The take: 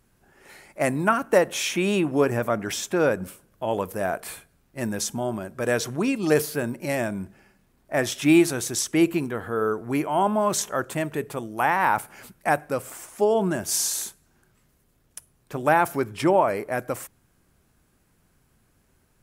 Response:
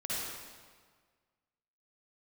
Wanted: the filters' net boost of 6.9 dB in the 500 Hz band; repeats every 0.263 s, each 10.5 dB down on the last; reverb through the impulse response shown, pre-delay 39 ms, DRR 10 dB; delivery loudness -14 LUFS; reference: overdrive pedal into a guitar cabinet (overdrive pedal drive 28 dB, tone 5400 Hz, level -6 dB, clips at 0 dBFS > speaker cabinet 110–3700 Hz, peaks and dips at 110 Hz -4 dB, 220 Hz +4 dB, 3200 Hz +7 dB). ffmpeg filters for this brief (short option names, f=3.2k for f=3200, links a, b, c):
-filter_complex "[0:a]equalizer=f=500:t=o:g=8.5,aecho=1:1:263|526|789:0.299|0.0896|0.0269,asplit=2[a][b];[1:a]atrim=start_sample=2205,adelay=39[c];[b][c]afir=irnorm=-1:irlink=0,volume=-14.5dB[d];[a][d]amix=inputs=2:normalize=0,asplit=2[e][f];[f]highpass=f=720:p=1,volume=28dB,asoftclip=type=tanh:threshold=0dB[g];[e][g]amix=inputs=2:normalize=0,lowpass=f=5.4k:p=1,volume=-6dB,highpass=110,equalizer=f=110:t=q:w=4:g=-4,equalizer=f=220:t=q:w=4:g=4,equalizer=f=3.2k:t=q:w=4:g=7,lowpass=f=3.7k:w=0.5412,lowpass=f=3.7k:w=1.3066,volume=-4.5dB"